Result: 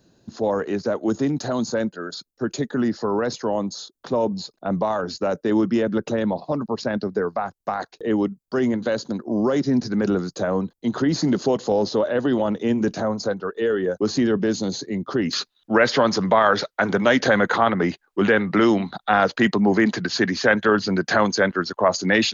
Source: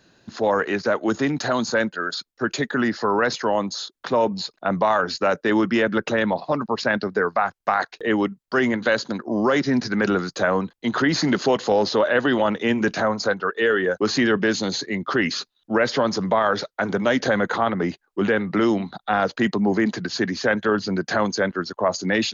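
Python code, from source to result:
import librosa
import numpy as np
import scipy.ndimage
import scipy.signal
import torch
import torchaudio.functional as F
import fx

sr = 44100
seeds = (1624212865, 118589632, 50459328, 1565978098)

y = fx.peak_eq(x, sr, hz=2000.0, db=fx.steps((0.0, -13.5), (15.33, 2.0)), octaves=2.4)
y = y * librosa.db_to_amplitude(2.0)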